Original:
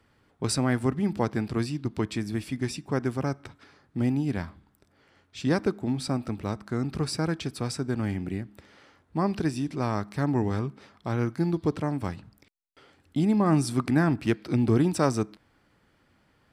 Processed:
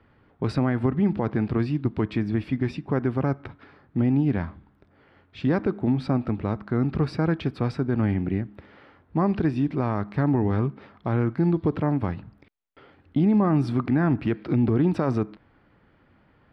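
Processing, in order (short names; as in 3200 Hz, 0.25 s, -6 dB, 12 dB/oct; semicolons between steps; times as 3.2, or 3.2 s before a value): limiter -19.5 dBFS, peak gain reduction 9 dB; air absorption 380 m; gain +6.5 dB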